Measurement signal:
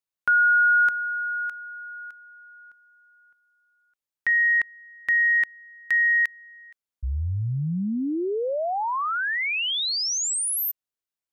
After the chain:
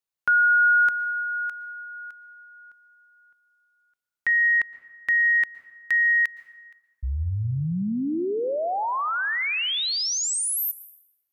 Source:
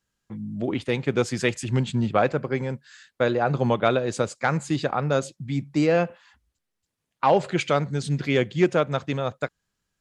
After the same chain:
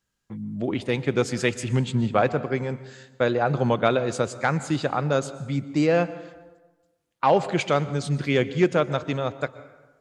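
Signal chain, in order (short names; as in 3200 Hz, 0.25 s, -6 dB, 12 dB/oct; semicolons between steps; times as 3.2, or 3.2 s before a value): plate-style reverb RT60 1.2 s, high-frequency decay 0.6×, pre-delay 0.105 s, DRR 15.5 dB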